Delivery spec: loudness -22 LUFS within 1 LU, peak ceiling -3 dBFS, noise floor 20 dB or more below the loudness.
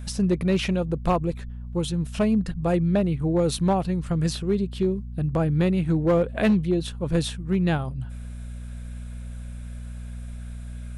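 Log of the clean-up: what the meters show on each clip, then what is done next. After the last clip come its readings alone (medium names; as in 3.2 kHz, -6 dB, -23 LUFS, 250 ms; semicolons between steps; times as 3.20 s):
clipped samples 0.7%; clipping level -14.5 dBFS; hum 60 Hz; highest harmonic 240 Hz; hum level -33 dBFS; loudness -24.5 LUFS; peak level -14.5 dBFS; loudness target -22.0 LUFS
-> clip repair -14.5 dBFS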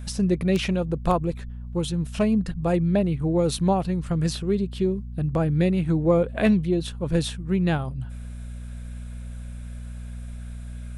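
clipped samples 0.0%; hum 60 Hz; highest harmonic 240 Hz; hum level -33 dBFS
-> de-hum 60 Hz, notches 4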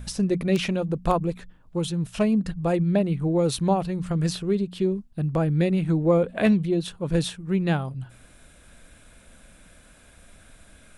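hum not found; loudness -24.5 LUFS; peak level -8.0 dBFS; loudness target -22.0 LUFS
-> trim +2.5 dB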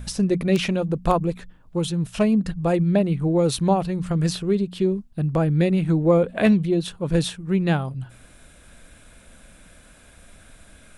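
loudness -22.0 LUFS; peak level -5.5 dBFS; noise floor -50 dBFS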